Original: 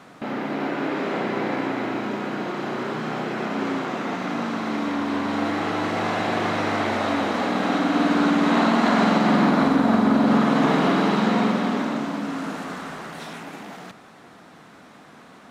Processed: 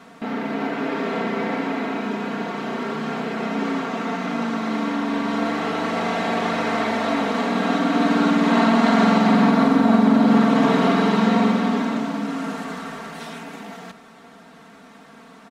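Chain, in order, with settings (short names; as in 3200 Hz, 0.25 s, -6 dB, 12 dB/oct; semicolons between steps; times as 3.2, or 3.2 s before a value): comb 4.4 ms, depth 78%; gain -1 dB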